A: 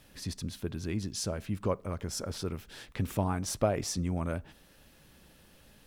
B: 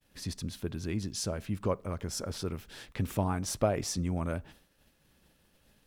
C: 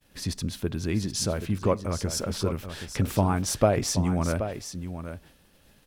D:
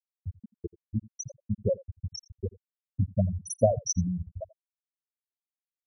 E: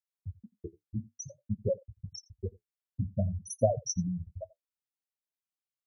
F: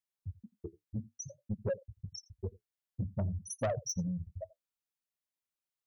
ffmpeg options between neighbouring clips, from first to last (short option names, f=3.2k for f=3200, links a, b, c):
-af "agate=range=-33dB:threshold=-51dB:ratio=3:detection=peak"
-af "aecho=1:1:778:0.316,volume=6.5dB"
-af "aemphasis=mode=production:type=75kf,afftfilt=real='re*gte(hypot(re,im),0.447)':imag='im*gte(hypot(re,im),0.447)':win_size=1024:overlap=0.75,aecho=1:1:85:0.0794"
-af "flanger=delay=5.8:depth=9.6:regen=-43:speed=0.51:shape=sinusoidal"
-af "asoftclip=type=tanh:threshold=-26dB,volume=-1dB"